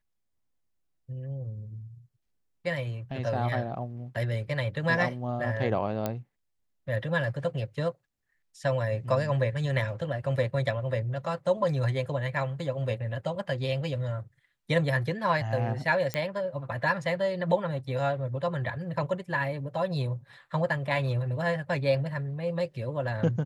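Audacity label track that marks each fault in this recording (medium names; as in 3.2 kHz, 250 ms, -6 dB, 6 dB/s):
6.060000	6.060000	pop -15 dBFS
16.140000	16.140000	pop -14 dBFS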